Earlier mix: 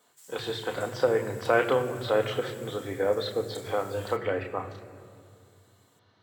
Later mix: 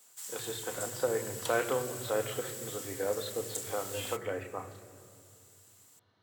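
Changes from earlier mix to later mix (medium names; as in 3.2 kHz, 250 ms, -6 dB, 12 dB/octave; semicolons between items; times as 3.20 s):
speech -7.0 dB; background +10.5 dB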